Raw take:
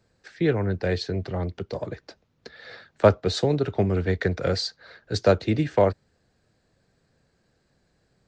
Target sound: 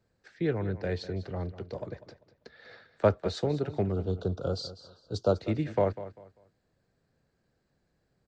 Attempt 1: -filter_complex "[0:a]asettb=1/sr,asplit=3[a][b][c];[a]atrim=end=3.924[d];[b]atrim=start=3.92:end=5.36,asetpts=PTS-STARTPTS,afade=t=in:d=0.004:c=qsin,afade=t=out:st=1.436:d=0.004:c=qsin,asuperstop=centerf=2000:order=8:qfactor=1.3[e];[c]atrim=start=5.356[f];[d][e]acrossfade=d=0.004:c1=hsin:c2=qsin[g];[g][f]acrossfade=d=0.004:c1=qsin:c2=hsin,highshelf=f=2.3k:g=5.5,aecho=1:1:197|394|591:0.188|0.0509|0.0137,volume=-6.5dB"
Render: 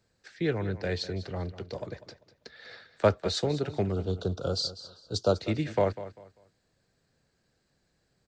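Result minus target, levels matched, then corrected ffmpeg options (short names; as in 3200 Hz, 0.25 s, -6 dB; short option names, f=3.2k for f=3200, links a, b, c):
4000 Hz band +7.0 dB
-filter_complex "[0:a]asettb=1/sr,asplit=3[a][b][c];[a]atrim=end=3.924[d];[b]atrim=start=3.92:end=5.36,asetpts=PTS-STARTPTS,afade=t=in:d=0.004:c=qsin,afade=t=out:st=1.436:d=0.004:c=qsin,asuperstop=centerf=2000:order=8:qfactor=1.3[e];[c]atrim=start=5.356[f];[d][e]acrossfade=d=0.004:c1=hsin:c2=qsin[g];[g][f]acrossfade=d=0.004:c1=qsin:c2=hsin,highshelf=f=2.3k:g=-5,aecho=1:1:197|394|591:0.188|0.0509|0.0137,volume=-6.5dB"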